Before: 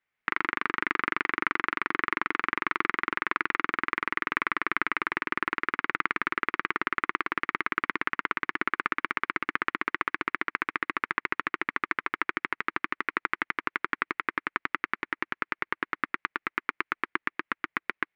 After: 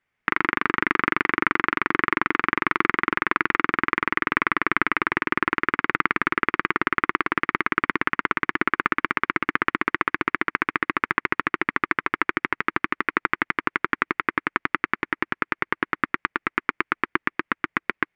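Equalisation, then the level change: air absorption 59 m; low shelf 310 Hz +7 dB; notch 4000 Hz, Q 15; +6.0 dB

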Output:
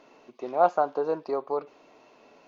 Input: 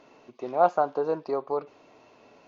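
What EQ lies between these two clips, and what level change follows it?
bell 92 Hz -12.5 dB 0.98 oct; 0.0 dB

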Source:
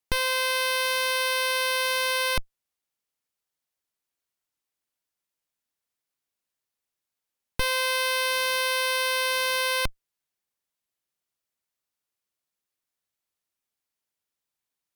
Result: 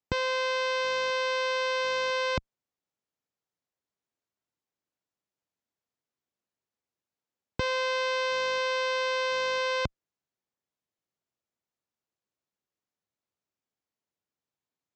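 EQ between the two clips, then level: HPF 77 Hz 12 dB/oct; brick-wall FIR low-pass 7800 Hz; tilt shelf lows +6 dB, about 1100 Hz; -2.0 dB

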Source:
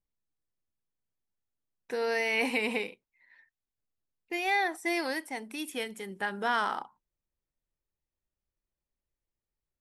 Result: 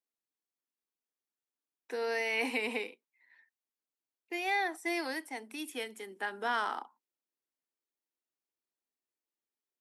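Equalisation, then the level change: steep high-pass 230 Hz 48 dB/oct; notch 560 Hz, Q 12; -3.5 dB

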